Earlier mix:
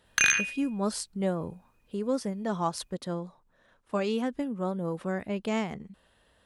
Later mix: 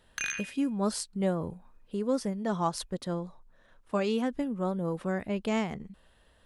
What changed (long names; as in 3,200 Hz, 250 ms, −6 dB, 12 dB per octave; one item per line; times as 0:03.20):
speech: remove high-pass filter 79 Hz 6 dB per octave
background −11.0 dB